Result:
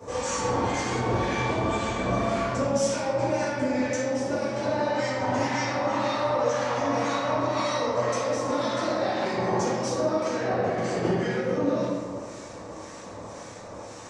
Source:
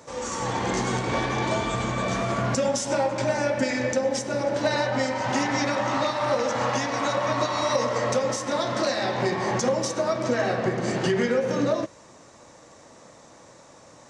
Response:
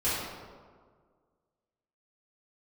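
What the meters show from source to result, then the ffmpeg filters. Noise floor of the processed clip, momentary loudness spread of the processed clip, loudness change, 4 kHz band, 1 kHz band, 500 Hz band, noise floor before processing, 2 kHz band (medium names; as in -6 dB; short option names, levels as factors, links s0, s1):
-41 dBFS, 14 LU, -1.5 dB, -3.5 dB, -0.5 dB, -1.0 dB, -50 dBFS, -3.0 dB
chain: -filter_complex "[0:a]acompressor=threshold=0.0224:ratio=6,acrossover=split=1200[s0][s1];[s0]aeval=exprs='val(0)*(1-0.7/2+0.7/2*cos(2*PI*1.9*n/s))':c=same[s2];[s1]aeval=exprs='val(0)*(1-0.7/2-0.7/2*cos(2*PI*1.9*n/s))':c=same[s3];[s2][s3]amix=inputs=2:normalize=0[s4];[1:a]atrim=start_sample=2205[s5];[s4][s5]afir=irnorm=-1:irlink=0,volume=1.19"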